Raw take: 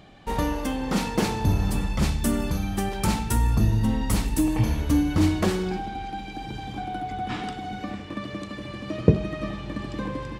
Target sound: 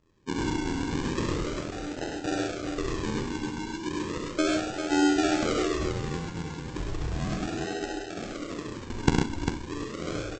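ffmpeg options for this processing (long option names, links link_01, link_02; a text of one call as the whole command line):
ffmpeg -i in.wav -filter_complex "[0:a]afftdn=noise_reduction=17:noise_floor=-32,tremolo=f=83:d=0.974,bandreject=frequency=383.6:width_type=h:width=4,bandreject=frequency=767.2:width_type=h:width=4,bandreject=frequency=1150.8:width_type=h:width=4,bandreject=frequency=1534.4:width_type=h:width=4,bandreject=frequency=1918:width_type=h:width=4,bandreject=frequency=2301.6:width_type=h:width=4,bandreject=frequency=2685.2:width_type=h:width=4,bandreject=frequency=3068.8:width_type=h:width=4,bandreject=frequency=3452.4:width_type=h:width=4,bandreject=frequency=3836:width_type=h:width=4,bandreject=frequency=4219.6:width_type=h:width=4,bandreject=frequency=4603.2:width_type=h:width=4,bandreject=frequency=4986.8:width_type=h:width=4,bandreject=frequency=5370.4:width_type=h:width=4,asplit=2[link_01][link_02];[link_02]acompressor=threshold=-33dB:ratio=16,volume=-2dB[link_03];[link_01][link_03]amix=inputs=2:normalize=0,afftfilt=real='re*between(b*sr/4096,280,5300)':imag='im*between(b*sr/4096,280,5300)':win_size=4096:overlap=0.75,aresample=16000,acrusher=samples=20:mix=1:aa=0.000001:lfo=1:lforange=12:lforate=0.35,aresample=44100,aecho=1:1:48|66|103|133|398:0.251|0.473|0.596|0.473|0.473" out.wav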